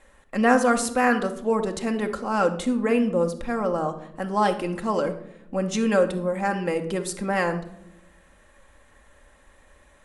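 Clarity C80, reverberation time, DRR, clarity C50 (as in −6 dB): 15.0 dB, non-exponential decay, 5.0 dB, 11.5 dB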